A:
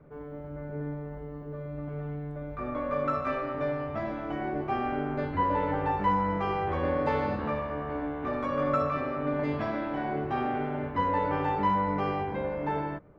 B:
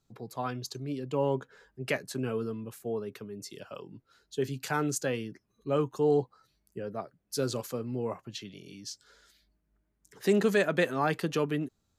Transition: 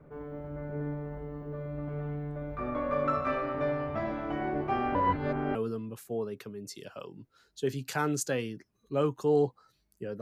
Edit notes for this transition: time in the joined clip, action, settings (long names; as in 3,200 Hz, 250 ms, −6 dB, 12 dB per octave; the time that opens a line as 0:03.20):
A
0:04.95–0:05.55: reverse
0:05.55: continue with B from 0:02.30